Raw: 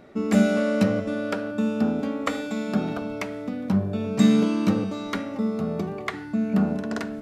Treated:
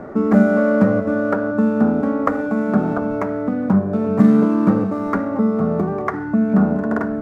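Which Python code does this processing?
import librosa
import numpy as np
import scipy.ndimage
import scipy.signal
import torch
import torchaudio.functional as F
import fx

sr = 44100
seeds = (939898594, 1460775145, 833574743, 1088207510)

y = scipy.signal.medfilt(x, 15)
y = fx.high_shelf_res(y, sr, hz=2100.0, db=-13.5, q=1.5)
y = fx.hum_notches(y, sr, base_hz=50, count=2)
y = fx.band_squash(y, sr, depth_pct=40)
y = y * librosa.db_to_amplitude(7.0)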